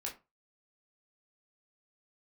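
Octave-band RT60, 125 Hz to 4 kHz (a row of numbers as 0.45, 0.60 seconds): 0.35, 0.25, 0.25, 0.30, 0.20, 0.15 seconds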